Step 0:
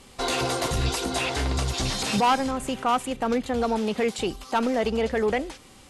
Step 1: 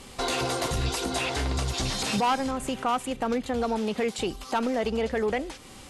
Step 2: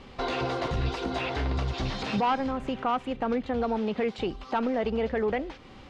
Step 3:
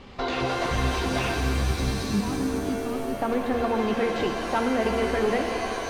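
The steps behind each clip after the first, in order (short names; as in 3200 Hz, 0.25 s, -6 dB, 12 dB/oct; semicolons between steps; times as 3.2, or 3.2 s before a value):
compressor 1.5:1, threshold -41 dBFS, peak gain reduction 8 dB; gain +4.5 dB
air absorption 240 m
spectral gain 1.34–3.19, 440–3700 Hz -16 dB; shimmer reverb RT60 3 s, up +7 st, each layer -2 dB, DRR 3 dB; gain +1.5 dB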